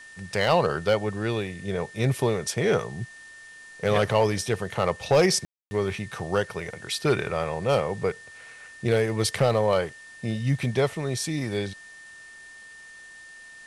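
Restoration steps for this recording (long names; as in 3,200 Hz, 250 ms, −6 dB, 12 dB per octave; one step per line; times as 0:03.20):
clipped peaks rebuilt −12.5 dBFS
notch filter 1,800 Hz, Q 30
ambience match 0:05.45–0:05.71
downward expander −38 dBFS, range −21 dB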